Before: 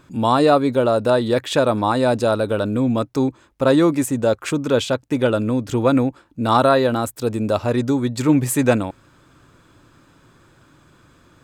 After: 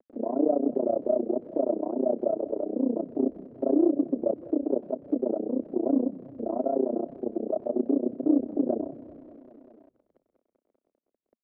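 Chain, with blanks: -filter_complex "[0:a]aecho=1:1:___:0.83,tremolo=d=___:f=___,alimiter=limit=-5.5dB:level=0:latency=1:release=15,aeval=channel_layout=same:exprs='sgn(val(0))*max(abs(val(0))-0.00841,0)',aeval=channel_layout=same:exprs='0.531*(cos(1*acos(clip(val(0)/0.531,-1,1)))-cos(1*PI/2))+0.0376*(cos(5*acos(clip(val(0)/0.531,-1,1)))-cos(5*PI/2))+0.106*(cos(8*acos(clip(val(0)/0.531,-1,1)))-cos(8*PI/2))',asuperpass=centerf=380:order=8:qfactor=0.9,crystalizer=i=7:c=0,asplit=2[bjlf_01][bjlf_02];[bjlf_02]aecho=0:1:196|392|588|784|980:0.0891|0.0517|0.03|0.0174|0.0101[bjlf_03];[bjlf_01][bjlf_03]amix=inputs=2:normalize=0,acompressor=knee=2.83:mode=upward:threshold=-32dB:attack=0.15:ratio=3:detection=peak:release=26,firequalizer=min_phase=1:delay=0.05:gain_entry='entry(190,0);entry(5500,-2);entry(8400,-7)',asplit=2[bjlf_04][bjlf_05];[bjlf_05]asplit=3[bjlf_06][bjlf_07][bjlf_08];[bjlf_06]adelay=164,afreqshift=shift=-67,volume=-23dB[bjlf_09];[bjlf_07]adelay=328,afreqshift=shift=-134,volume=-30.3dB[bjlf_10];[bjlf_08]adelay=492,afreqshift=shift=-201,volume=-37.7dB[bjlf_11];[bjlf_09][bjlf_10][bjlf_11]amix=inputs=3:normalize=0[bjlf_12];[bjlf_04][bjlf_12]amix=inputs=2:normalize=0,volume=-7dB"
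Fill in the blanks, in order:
3, 0.947, 30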